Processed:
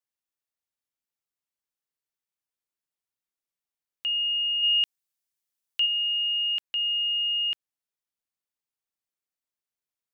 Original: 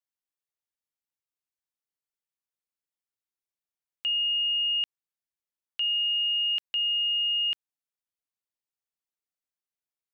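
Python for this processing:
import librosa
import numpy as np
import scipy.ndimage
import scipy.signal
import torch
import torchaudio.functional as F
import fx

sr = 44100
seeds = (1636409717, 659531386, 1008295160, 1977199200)

y = fx.high_shelf(x, sr, hz=3000.0, db=9.5, at=(4.62, 5.85), fade=0.02)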